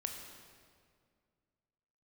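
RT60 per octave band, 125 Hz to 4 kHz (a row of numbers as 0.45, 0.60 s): 2.6, 2.5, 2.2, 1.9, 1.7, 1.5 s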